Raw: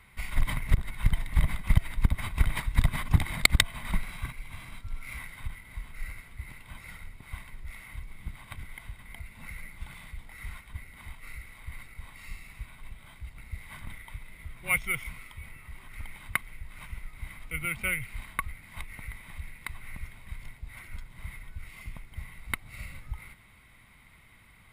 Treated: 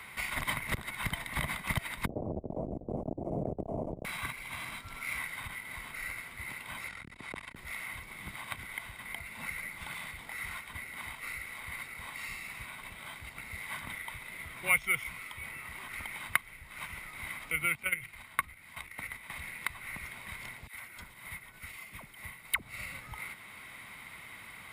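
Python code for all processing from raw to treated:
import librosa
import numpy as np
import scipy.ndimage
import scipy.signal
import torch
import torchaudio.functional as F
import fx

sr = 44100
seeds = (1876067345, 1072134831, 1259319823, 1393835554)

y = fx.chain(x, sr, fx.delta_mod(bps=64000, step_db=-20.0),
    fx.ellip_lowpass(hz=660.0, order=4, stop_db=60),
    fx.over_compress(threshold_db=-28.0, ratio=-0.5), at=(2.06, 4.05))
y = fx.chain(y, sr, fx.lowpass(hz=8400.0, slope=12),
    fx.transformer_sat(knee_hz=370.0), at=(6.88, 7.56))
y = fx.chain(y, sr, fx.level_steps(step_db=14),
    fx.hum_notches(base_hz=50, count=7),
    fx.doubler(ms=12.0, db=-13.5), at=(17.75, 19.3))
y = fx.chain(y, sr, fx.high_shelf(hz=9400.0, db=6.5),
    fx.dispersion(late='lows', ms=73.0, hz=780.0),
    fx.upward_expand(threshold_db=-49.0, expansion=1.5), at=(20.67, 22.62))
y = fx.highpass(y, sr, hz=430.0, slope=6)
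y = fx.band_squash(y, sr, depth_pct=40)
y = y * 10.0 ** (5.0 / 20.0)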